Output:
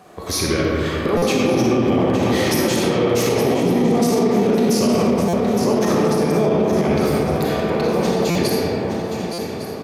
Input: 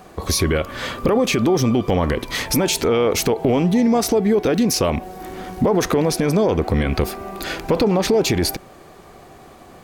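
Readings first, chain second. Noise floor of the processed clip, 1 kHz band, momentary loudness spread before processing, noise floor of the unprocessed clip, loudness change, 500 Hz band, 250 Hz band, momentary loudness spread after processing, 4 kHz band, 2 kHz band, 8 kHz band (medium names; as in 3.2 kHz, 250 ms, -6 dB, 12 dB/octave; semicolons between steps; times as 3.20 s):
-28 dBFS, +2.0 dB, 10 LU, -44 dBFS, +1.0 dB, +2.0 dB, +2.0 dB, 6 LU, -1.0 dB, +0.5 dB, -2.0 dB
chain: high-pass 99 Hz 12 dB/octave; random-step tremolo; shuffle delay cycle 1155 ms, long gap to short 3:1, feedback 41%, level -10 dB; algorithmic reverb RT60 4 s, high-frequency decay 0.35×, pre-delay 5 ms, DRR -5.5 dB; resampled via 32 kHz; loudness maximiser +6.5 dB; buffer glitch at 1.17/5.28/8.30/9.33 s, samples 256, times 8; trim -7.5 dB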